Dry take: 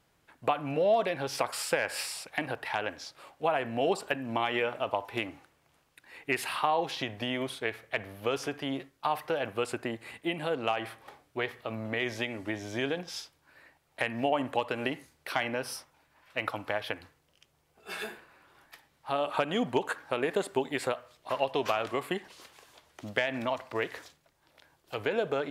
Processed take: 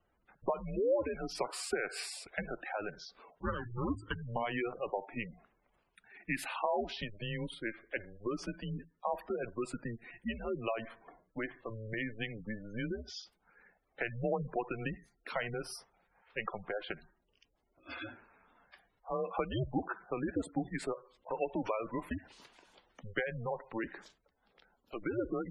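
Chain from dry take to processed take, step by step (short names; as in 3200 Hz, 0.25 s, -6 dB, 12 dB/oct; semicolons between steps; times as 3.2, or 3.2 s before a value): 3.38–4.22 minimum comb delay 0.6 ms; frequency shift -110 Hz; spectral gate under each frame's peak -15 dB strong; gain -5 dB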